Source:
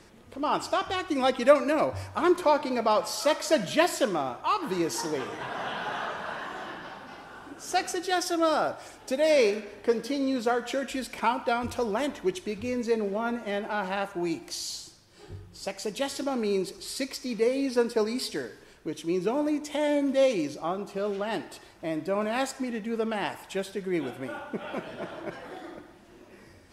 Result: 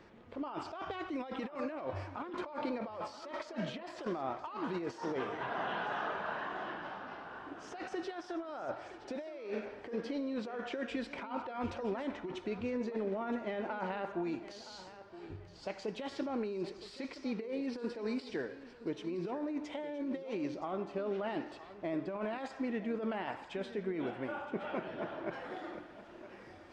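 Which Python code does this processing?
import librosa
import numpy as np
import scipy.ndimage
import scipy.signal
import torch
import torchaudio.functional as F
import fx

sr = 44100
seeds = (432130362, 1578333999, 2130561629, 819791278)

y = fx.tilt_eq(x, sr, slope=2.0)
y = fx.over_compress(y, sr, threshold_db=-33.0, ratio=-1.0)
y = fx.spacing_loss(y, sr, db_at_10k=fx.steps((0.0, 38.0), (25.32, 26.0)))
y = fx.echo_thinned(y, sr, ms=969, feedback_pct=31, hz=200.0, wet_db=-14.0)
y = y * 10.0 ** (-2.5 / 20.0)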